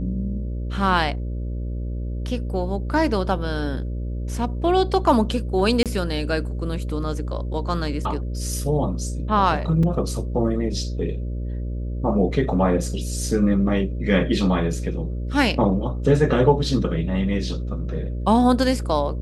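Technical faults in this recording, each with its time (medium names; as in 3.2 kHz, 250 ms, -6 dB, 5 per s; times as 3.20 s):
buzz 60 Hz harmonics 10 -27 dBFS
5.83–5.86 s: dropout 27 ms
9.83 s: dropout 3.9 ms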